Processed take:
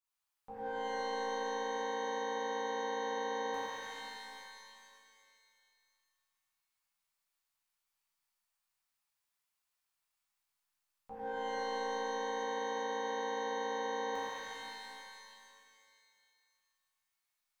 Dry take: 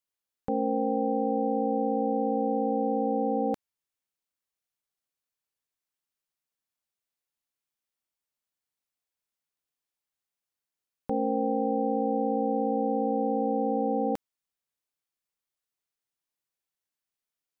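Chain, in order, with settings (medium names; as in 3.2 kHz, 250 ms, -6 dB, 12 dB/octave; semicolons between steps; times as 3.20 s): ten-band graphic EQ 125 Hz -6 dB, 250 Hz -12 dB, 500 Hz -6 dB, 1 kHz +6 dB; peak limiter -34 dBFS, peak gain reduction 11.5 dB; pitch-shifted reverb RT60 2.2 s, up +12 st, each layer -2 dB, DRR -10 dB; trim -8 dB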